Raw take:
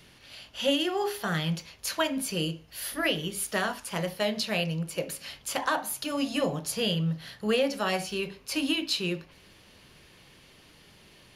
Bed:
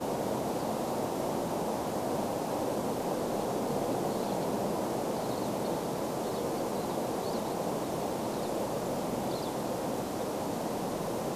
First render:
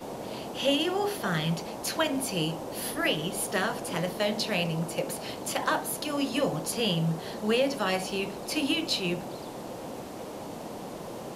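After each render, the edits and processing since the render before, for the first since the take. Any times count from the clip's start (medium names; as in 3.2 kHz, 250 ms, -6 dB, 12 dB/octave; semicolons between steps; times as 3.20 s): add bed -5.5 dB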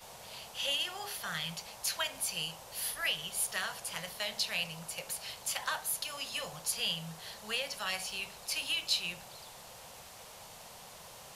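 amplifier tone stack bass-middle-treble 10-0-10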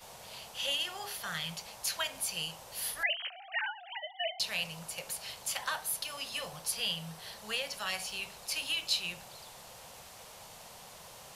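3.03–4.40 s: formants replaced by sine waves; 5.62–7.41 s: band-stop 6.9 kHz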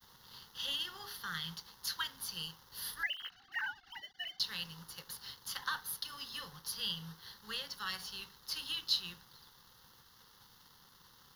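crossover distortion -52 dBFS; static phaser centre 2.4 kHz, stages 6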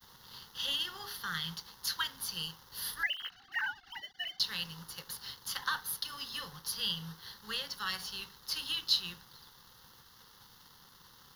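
trim +3.5 dB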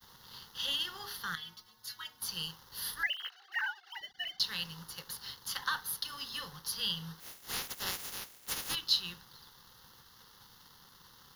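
1.35–2.22 s: inharmonic resonator 110 Hz, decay 0.22 s, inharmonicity 0.008; 3.11–4.01 s: brick-wall FIR high-pass 340 Hz; 7.19–8.74 s: spectral peaks clipped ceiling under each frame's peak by 29 dB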